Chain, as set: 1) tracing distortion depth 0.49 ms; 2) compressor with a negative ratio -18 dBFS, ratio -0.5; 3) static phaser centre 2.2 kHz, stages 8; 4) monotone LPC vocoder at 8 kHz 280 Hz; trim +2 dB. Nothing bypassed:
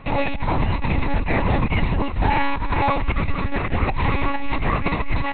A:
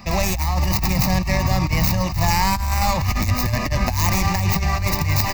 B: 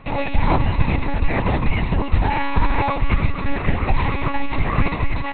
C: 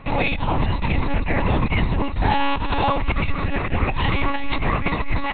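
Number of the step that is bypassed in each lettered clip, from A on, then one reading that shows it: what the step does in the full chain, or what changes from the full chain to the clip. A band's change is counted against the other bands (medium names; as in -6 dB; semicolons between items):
4, 4 kHz band +8.0 dB; 2, crest factor change +1.5 dB; 1, 4 kHz band +4.0 dB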